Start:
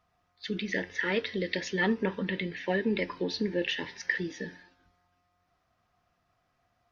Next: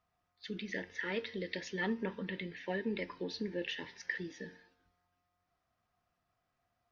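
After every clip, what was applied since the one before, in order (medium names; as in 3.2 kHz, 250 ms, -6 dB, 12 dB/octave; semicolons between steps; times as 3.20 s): feedback comb 230 Hz, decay 0.71 s, harmonics all, mix 40%; trim -4 dB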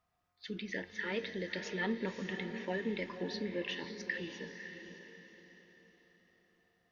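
echo that smears into a reverb 560 ms, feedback 40%, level -8 dB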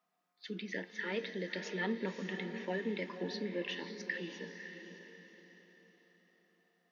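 elliptic high-pass 170 Hz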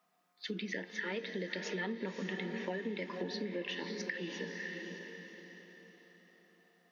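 compression 5:1, threshold -42 dBFS, peak gain reduction 10.5 dB; trim +6.5 dB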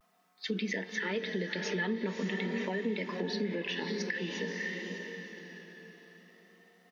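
comb 4.6 ms, depth 36%; in parallel at -2 dB: peak limiter -31.5 dBFS, peak gain reduction 8.5 dB; on the sum: vibrato 0.47 Hz 39 cents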